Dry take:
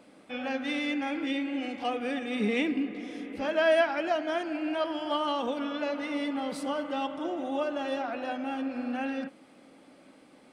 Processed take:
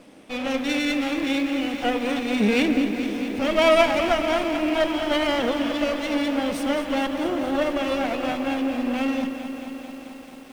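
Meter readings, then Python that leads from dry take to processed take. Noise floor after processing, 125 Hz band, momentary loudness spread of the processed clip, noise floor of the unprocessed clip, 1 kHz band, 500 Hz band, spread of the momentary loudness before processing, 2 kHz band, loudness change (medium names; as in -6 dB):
-41 dBFS, no reading, 11 LU, -57 dBFS, +6.0 dB, +7.0 dB, 7 LU, +7.0 dB, +7.5 dB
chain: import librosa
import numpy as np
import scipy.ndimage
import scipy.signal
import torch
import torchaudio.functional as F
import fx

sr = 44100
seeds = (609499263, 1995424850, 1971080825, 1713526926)

y = fx.lower_of_two(x, sr, delay_ms=0.35)
y = fx.echo_crushed(y, sr, ms=220, feedback_pct=80, bits=9, wet_db=-10.5)
y = y * 10.0 ** (7.5 / 20.0)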